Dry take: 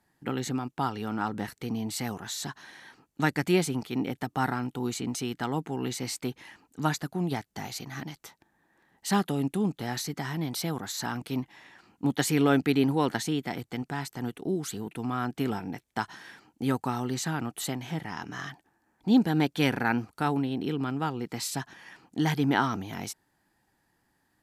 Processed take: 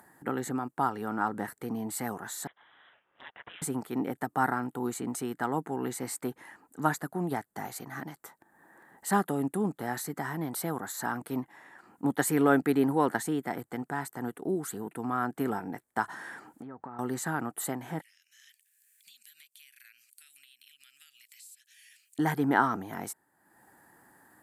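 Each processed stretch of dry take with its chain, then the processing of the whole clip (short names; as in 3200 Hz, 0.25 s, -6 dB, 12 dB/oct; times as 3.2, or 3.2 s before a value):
2.47–3.62 inverse Chebyshev high-pass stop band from 920 Hz, stop band 60 dB + careless resampling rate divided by 6×, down none, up filtered
16.04–16.99 G.711 law mismatch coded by mu + treble ducked by the level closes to 1600 Hz, closed at -24.5 dBFS + compressor 12:1, threshold -38 dBFS
18.01–22.19 elliptic high-pass 2500 Hz, stop band 60 dB + compressor 3:1, threshold -53 dBFS
whole clip: HPF 330 Hz 6 dB/oct; band shelf 3800 Hz -13.5 dB; upward compressor, threshold -50 dBFS; gain +2.5 dB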